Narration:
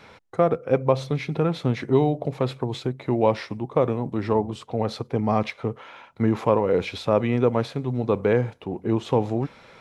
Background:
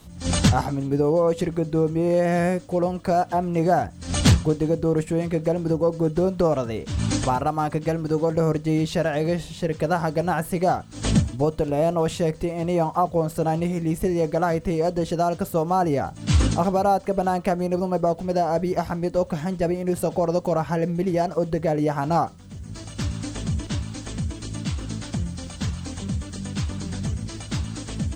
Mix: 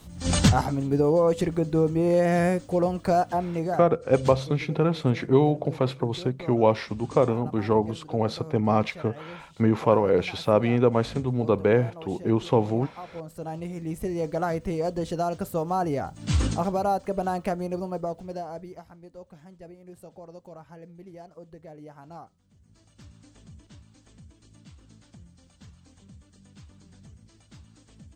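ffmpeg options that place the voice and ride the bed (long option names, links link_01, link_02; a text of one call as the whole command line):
ffmpeg -i stem1.wav -i stem2.wav -filter_complex "[0:a]adelay=3400,volume=0dB[link_01];[1:a]volume=13.5dB,afade=type=out:start_time=3.14:duration=0.83:silence=0.11885,afade=type=in:start_time=13.03:duration=1.4:silence=0.188365,afade=type=out:start_time=17.44:duration=1.41:silence=0.133352[link_02];[link_01][link_02]amix=inputs=2:normalize=0" out.wav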